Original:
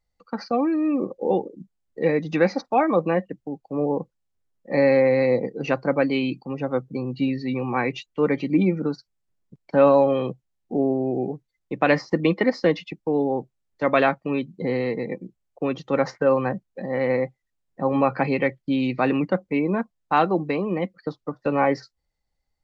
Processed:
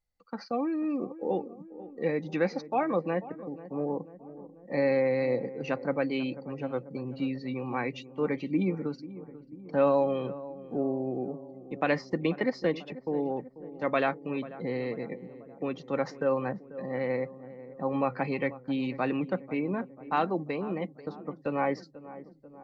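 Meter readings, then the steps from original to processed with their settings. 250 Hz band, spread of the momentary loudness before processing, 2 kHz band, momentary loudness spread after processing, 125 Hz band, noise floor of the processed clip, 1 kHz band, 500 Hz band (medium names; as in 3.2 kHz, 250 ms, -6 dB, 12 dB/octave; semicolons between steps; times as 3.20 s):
-8.0 dB, 11 LU, -8.0 dB, 15 LU, -8.0 dB, -52 dBFS, -8.0 dB, -8.0 dB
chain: filtered feedback delay 490 ms, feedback 67%, low-pass 1 kHz, level -15 dB; trim -8 dB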